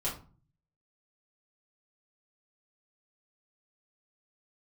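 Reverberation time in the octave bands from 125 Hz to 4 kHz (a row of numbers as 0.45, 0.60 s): 0.85, 0.60, 0.35, 0.40, 0.30, 0.25 s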